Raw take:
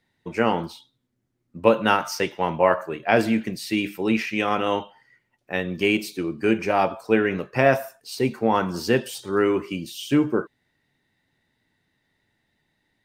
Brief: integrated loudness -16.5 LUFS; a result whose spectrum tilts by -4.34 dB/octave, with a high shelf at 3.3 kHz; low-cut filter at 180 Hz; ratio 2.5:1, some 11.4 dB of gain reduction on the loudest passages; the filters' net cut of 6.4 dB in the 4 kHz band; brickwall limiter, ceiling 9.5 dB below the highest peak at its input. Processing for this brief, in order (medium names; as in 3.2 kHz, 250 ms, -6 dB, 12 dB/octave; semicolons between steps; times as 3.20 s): high-pass 180 Hz; treble shelf 3.3 kHz -7 dB; peaking EQ 4 kHz -4.5 dB; compression 2.5:1, threshold -30 dBFS; trim +19 dB; peak limiter -4.5 dBFS